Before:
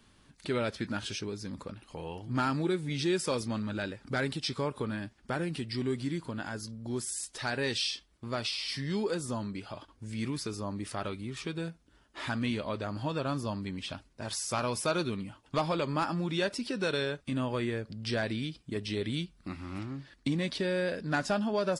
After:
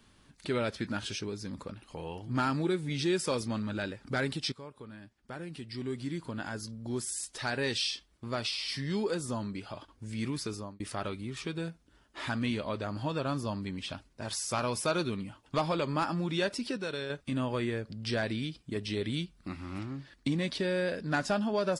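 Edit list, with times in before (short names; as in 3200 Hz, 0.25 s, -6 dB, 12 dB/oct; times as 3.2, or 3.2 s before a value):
4.52–6.42 fade in quadratic, from -14 dB
10.53–10.8 fade out
16.77–17.1 gain -5.5 dB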